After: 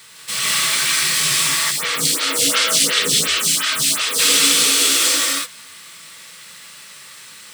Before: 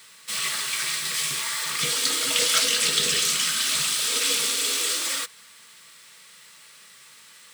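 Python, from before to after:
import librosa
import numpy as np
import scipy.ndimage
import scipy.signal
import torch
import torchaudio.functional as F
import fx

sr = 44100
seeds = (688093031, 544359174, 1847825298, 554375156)

y = fx.low_shelf(x, sr, hz=130.0, db=7.0)
y = fx.rev_gated(y, sr, seeds[0], gate_ms=220, shape='rising', drr_db=-3.0)
y = fx.stagger_phaser(y, sr, hz=2.8, at=(1.7, 4.18), fade=0.02)
y = y * 10.0 ** (5.0 / 20.0)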